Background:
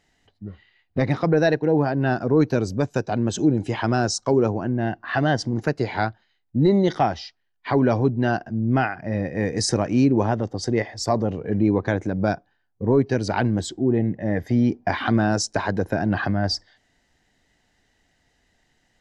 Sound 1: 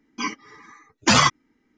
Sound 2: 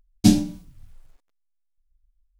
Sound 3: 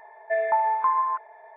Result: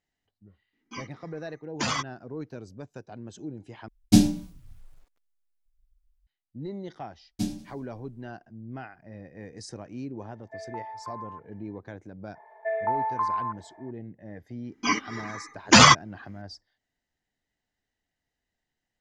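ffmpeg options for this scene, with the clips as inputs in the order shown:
-filter_complex "[1:a]asplit=2[a][b];[2:a]asplit=2[c][d];[3:a]asplit=2[e][f];[0:a]volume=-19dB[g];[d]aecho=1:1:92|184|276|368:0.141|0.072|0.0367|0.0187[h];[f]highshelf=f=2k:g=-6.5[i];[b]dynaudnorm=f=220:g=3:m=10.5dB[j];[g]asplit=2[k][l];[k]atrim=end=3.884[m];[c]atrim=end=2.39,asetpts=PTS-STARTPTS,volume=-1.5dB[n];[l]atrim=start=6.266[o];[a]atrim=end=1.77,asetpts=PTS-STARTPTS,volume=-12.5dB,afade=t=in:d=0.004:c=hsin,afade=t=out:st=1.766:d=0.004:c=hsin,adelay=730[p];[h]atrim=end=2.39,asetpts=PTS-STARTPTS,volume=-14.5dB,afade=t=in:d=0.004:c=hsin,afade=t=out:st=2.386:d=0.004:c=hsin,adelay=7150[q];[e]atrim=end=1.56,asetpts=PTS-STARTPTS,volume=-16.5dB,afade=t=in:d=0.004:c=hsin,afade=t=out:st=1.556:d=0.004:c=hsin,adelay=10220[r];[i]atrim=end=1.56,asetpts=PTS-STARTPTS,volume=-3.5dB,afade=t=in:d=0.004:c=hsin,afade=t=out:st=1.556:d=0.004:c=hsin,adelay=12350[s];[j]atrim=end=1.77,asetpts=PTS-STARTPTS,volume=-0.5dB,afade=t=in:d=0.004:c=hsin,afade=t=out:st=1.766:d=0.004:c=hsin,adelay=14650[t];[m][n]acrossfade=d=0.004:c1=hsin:c2=hsin[u];[u][o]acrossfade=d=0.004:c1=hsin:c2=hsin[v];[v][p][q][r][s][t]amix=inputs=6:normalize=0"

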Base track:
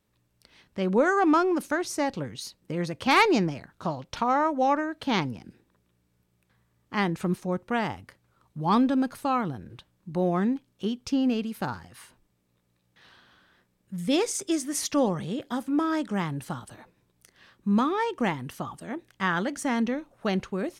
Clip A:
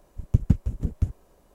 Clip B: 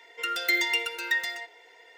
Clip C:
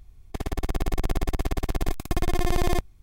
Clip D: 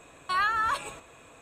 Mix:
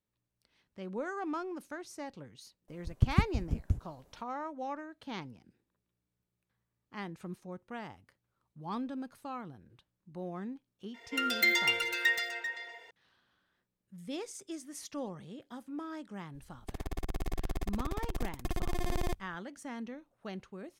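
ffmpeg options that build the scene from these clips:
-filter_complex "[0:a]volume=-15.5dB[a];[2:a]asplit=2[b][c];[c]adelay=390,highpass=300,lowpass=3.4k,asoftclip=type=hard:threshold=-21.5dB,volume=-8dB[d];[b][d]amix=inputs=2:normalize=0[e];[1:a]atrim=end=1.54,asetpts=PTS-STARTPTS,volume=-6dB,afade=t=in:d=0.004:c=hsin,afade=t=out:st=1.536:d=0.004:c=hsin,adelay=2680[f];[e]atrim=end=1.97,asetpts=PTS-STARTPTS,volume=-2dB,afade=t=in:d=0.004:c=hsin,afade=t=out:st=1.966:d=0.004:c=hsin,adelay=10940[g];[3:a]atrim=end=3.02,asetpts=PTS-STARTPTS,volume=-10dB,afade=t=in:d=0.004:c=hsin,afade=t=out:st=3.016:d=0.004:c=hsin,adelay=16340[h];[a][f][g][h]amix=inputs=4:normalize=0"

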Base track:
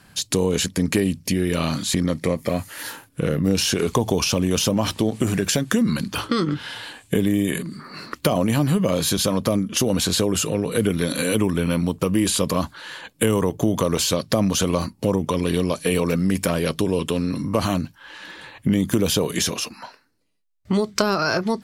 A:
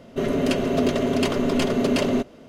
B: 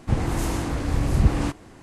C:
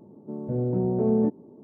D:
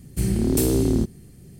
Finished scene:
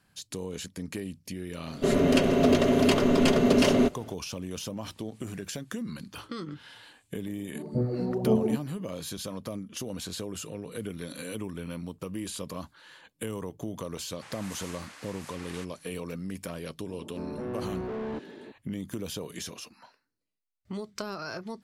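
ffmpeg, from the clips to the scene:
-filter_complex "[3:a]asplit=2[a][b];[0:a]volume=-16dB[c];[a]aphaser=in_gain=1:out_gain=1:delay=4.4:decay=0.59:speed=1.9:type=sinusoidal[d];[2:a]highpass=1.4k[e];[b]asplit=2[f][g];[g]highpass=f=720:p=1,volume=32dB,asoftclip=type=tanh:threshold=-13dB[h];[f][h]amix=inputs=2:normalize=0,lowpass=f=1.1k:p=1,volume=-6dB[i];[1:a]atrim=end=2.48,asetpts=PTS-STARTPTS,afade=t=in:d=0.004:c=hsin,afade=t=out:st=2.476:d=0.004:c=hsin,adelay=1660[j];[d]atrim=end=1.63,asetpts=PTS-STARTPTS,volume=-5.5dB,afade=t=in:d=0.004:c=hsin,afade=t=out:st=1.626:d=0.004:c=hsin,adelay=7260[k];[e]atrim=end=1.82,asetpts=PTS-STARTPTS,volume=-8dB,afade=t=in:d=0.004:c=hsin,afade=t=out:st=1.816:d=0.004:c=hsin,adelay=14130[l];[i]atrim=end=1.63,asetpts=PTS-STARTPTS,volume=-15dB,afade=t=in:d=0.004:c=hsin,afade=t=out:st=1.626:d=0.004:c=hsin,adelay=16890[m];[c][j][k][l][m]amix=inputs=5:normalize=0"

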